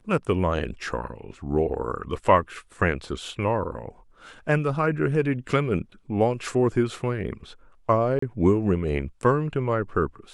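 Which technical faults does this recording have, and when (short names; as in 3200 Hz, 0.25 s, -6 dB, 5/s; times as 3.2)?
8.19–8.22 gap 34 ms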